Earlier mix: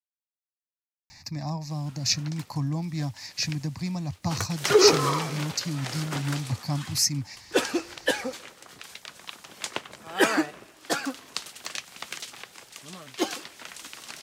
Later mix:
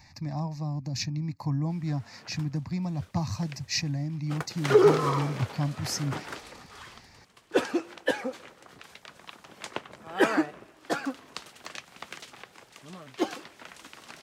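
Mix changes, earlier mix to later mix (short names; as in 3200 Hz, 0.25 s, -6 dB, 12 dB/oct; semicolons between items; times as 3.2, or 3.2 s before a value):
speech: entry -1.10 s; master: add high shelf 2800 Hz -12 dB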